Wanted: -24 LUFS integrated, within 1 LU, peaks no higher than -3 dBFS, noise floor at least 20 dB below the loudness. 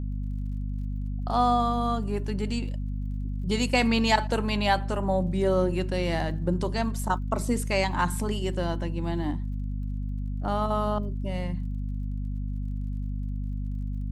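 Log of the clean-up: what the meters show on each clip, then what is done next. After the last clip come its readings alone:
ticks 43/s; hum 50 Hz; harmonics up to 250 Hz; hum level -28 dBFS; loudness -28.5 LUFS; peak -8.0 dBFS; loudness target -24.0 LUFS
-> de-click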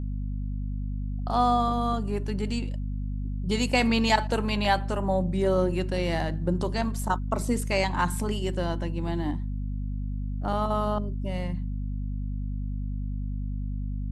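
ticks 0.071/s; hum 50 Hz; harmonics up to 250 Hz; hum level -28 dBFS
-> notches 50/100/150/200/250 Hz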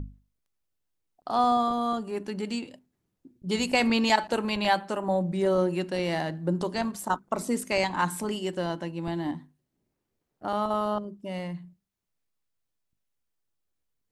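hum none; loudness -28.0 LUFS; peak -8.5 dBFS; loudness target -24.0 LUFS
-> gain +4 dB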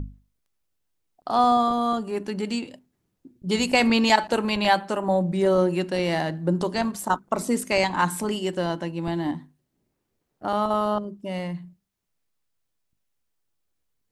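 loudness -24.0 LUFS; peak -4.5 dBFS; noise floor -77 dBFS

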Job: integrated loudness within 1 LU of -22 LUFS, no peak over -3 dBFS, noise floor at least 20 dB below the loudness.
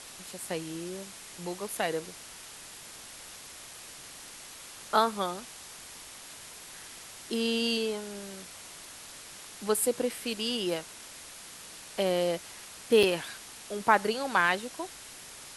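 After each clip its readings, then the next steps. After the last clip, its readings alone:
dropouts 1; longest dropout 4.4 ms; noise floor -47 dBFS; noise floor target -50 dBFS; loudness -30.0 LUFS; peak -8.0 dBFS; loudness target -22.0 LUFS
-> interpolate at 13.03, 4.4 ms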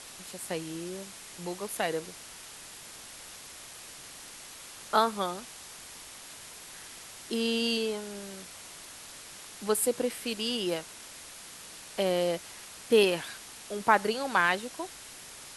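dropouts 0; noise floor -47 dBFS; noise floor target -50 dBFS
-> noise print and reduce 6 dB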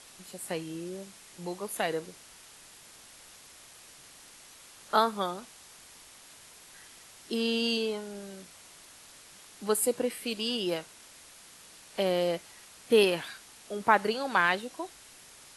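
noise floor -53 dBFS; loudness -30.0 LUFS; peak -8.0 dBFS; loudness target -22.0 LUFS
-> gain +8 dB; limiter -3 dBFS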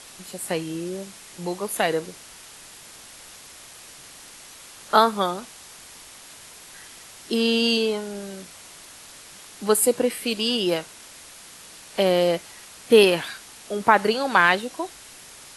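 loudness -22.0 LUFS; peak -3.0 dBFS; noise floor -45 dBFS

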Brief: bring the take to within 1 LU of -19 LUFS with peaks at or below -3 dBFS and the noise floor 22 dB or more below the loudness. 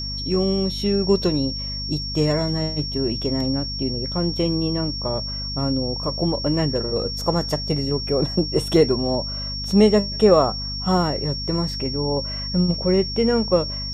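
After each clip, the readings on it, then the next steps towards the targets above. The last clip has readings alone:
hum 50 Hz; harmonics up to 250 Hz; hum level -29 dBFS; steady tone 5500 Hz; tone level -28 dBFS; loudness -21.5 LUFS; peak -3.0 dBFS; loudness target -19.0 LUFS
-> de-hum 50 Hz, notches 5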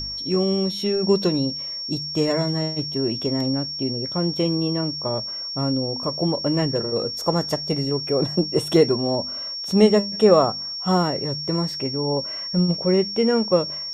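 hum none; steady tone 5500 Hz; tone level -28 dBFS
-> notch 5500 Hz, Q 30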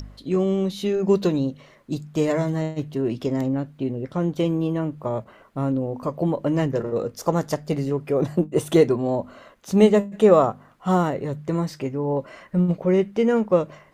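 steady tone none; loudness -23.0 LUFS; peak -4.0 dBFS; loudness target -19.0 LUFS
-> gain +4 dB; limiter -3 dBFS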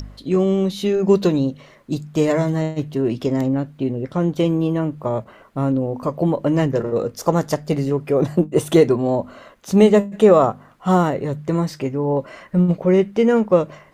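loudness -19.5 LUFS; peak -3.0 dBFS; noise floor -48 dBFS

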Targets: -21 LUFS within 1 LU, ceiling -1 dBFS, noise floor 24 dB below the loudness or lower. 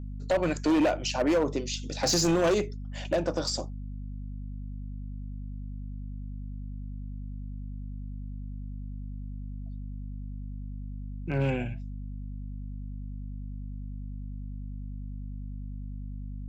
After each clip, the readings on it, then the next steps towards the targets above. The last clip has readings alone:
clipped 1.2%; flat tops at -20.0 dBFS; hum 50 Hz; harmonics up to 250 Hz; hum level -35 dBFS; loudness -33.0 LUFS; peak -20.0 dBFS; loudness target -21.0 LUFS
-> clip repair -20 dBFS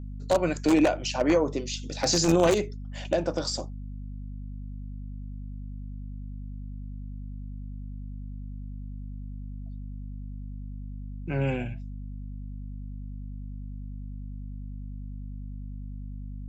clipped 0.0%; hum 50 Hz; harmonics up to 250 Hz; hum level -35 dBFS
-> de-hum 50 Hz, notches 5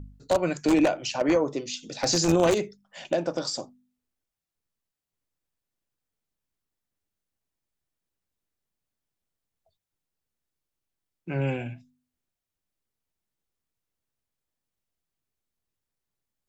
hum none; loudness -26.0 LUFS; peak -10.5 dBFS; loudness target -21.0 LUFS
-> gain +5 dB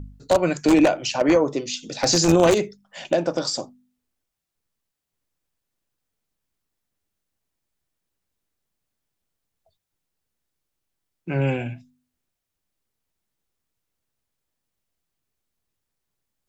loudness -21.0 LUFS; peak -5.5 dBFS; noise floor -82 dBFS

